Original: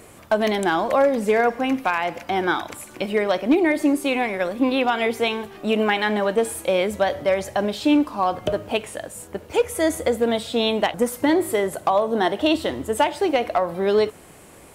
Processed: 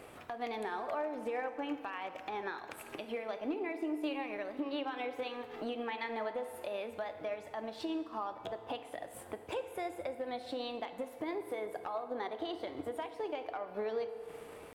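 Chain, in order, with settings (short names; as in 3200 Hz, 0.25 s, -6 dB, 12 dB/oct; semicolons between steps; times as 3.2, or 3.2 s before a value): tone controls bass -6 dB, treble -10 dB; compressor 4:1, threshold -34 dBFS, peak gain reduction 16.5 dB; transient shaper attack +5 dB, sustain -4 dB; limiter -24.5 dBFS, peak gain reduction 11.5 dB; pitch shift +1.5 st; FDN reverb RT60 2.3 s, low-frequency decay 0.75×, high-frequency decay 0.6×, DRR 9 dB; gain -4.5 dB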